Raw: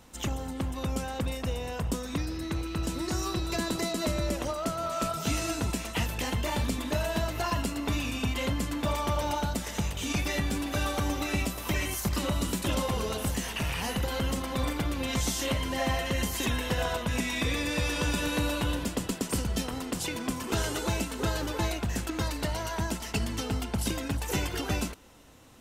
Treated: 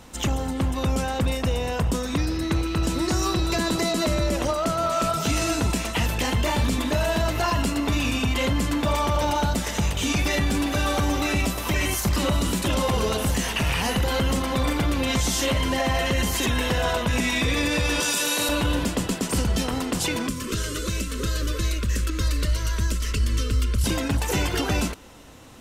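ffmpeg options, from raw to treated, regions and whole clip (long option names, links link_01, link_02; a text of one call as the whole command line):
ffmpeg -i in.wav -filter_complex "[0:a]asettb=1/sr,asplit=3[link_01][link_02][link_03];[link_01]atrim=end=18.004[link_04];[link_02]atrim=start=18:end=18.49,asetpts=PTS-STARTPTS,afade=type=in:duration=0.004:curve=qsin,afade=type=out:start_time=0.486:duration=0.004:curve=qsin,highpass=frequency=98:width=0.5412,highpass=frequency=98:width=1.3066,bass=frequency=250:gain=-14,treble=frequency=4000:gain=12,asplit=2[link_05][link_06];[link_06]adelay=25,volume=-12dB[link_07];[link_05][link_07]amix=inputs=2:normalize=0,atrim=end_sample=21609[link_08];[link_03]atrim=start=18.486[link_09];[link_04][link_08]acrossfade=duration=0.004:curve1=hsin:curve2=qsin[link_10];[link_10][link_09]acrossfade=duration=0.004:curve1=qsin:curve2=hsin,asettb=1/sr,asplit=3[link_11][link_12][link_13];[link_11]atrim=end=20.274[link_14];[link_12]atrim=start=20.27:end=23.84,asetpts=PTS-STARTPTS,afade=type=in:duration=0.004:curve=qsin,afade=type=out:start_time=3.566:duration=0.004:curve=qsin,acrossover=split=190|3700[link_15][link_16][link_17];[link_15]acompressor=threshold=-36dB:ratio=4[link_18];[link_16]acompressor=threshold=-39dB:ratio=4[link_19];[link_17]acompressor=threshold=-40dB:ratio=4[link_20];[link_18][link_19][link_20]amix=inputs=3:normalize=0,asubboost=boost=10:cutoff=58,asuperstop=centerf=790:order=8:qfactor=1.9[link_21];[link_13]atrim=start=23.836[link_22];[link_14][link_21]acrossfade=duration=0.004:curve1=hsin:curve2=qsin[link_23];[link_23][link_22]acrossfade=duration=0.004:curve1=qsin:curve2=hsin,highshelf=frequency=12000:gain=-5.5,alimiter=limit=-23dB:level=0:latency=1:release=14,volume=8.5dB" out.wav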